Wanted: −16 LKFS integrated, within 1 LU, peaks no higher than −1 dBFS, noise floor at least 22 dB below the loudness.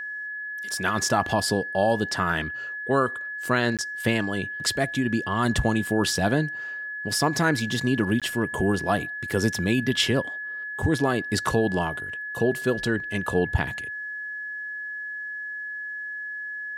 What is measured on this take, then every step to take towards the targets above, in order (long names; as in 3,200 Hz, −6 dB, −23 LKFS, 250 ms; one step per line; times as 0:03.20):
number of dropouts 2; longest dropout 17 ms; interfering tone 1,700 Hz; level of the tone −31 dBFS; integrated loudness −25.5 LKFS; sample peak −8.5 dBFS; target loudness −16.0 LKFS
→ repair the gap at 0:03.77/0:08.20, 17 ms
notch filter 1,700 Hz, Q 30
level +9.5 dB
brickwall limiter −1 dBFS